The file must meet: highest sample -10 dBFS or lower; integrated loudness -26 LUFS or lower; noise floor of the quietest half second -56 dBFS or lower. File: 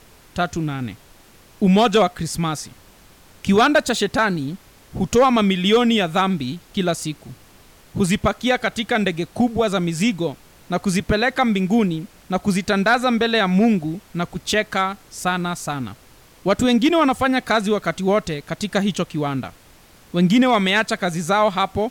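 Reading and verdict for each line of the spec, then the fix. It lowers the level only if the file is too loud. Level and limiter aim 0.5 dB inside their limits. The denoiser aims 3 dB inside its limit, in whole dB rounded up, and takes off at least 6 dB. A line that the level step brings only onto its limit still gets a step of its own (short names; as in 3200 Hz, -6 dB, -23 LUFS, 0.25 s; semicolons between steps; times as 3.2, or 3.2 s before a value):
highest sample -7.5 dBFS: fail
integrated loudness -20.0 LUFS: fail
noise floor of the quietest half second -49 dBFS: fail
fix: denoiser 6 dB, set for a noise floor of -49 dBFS; gain -6.5 dB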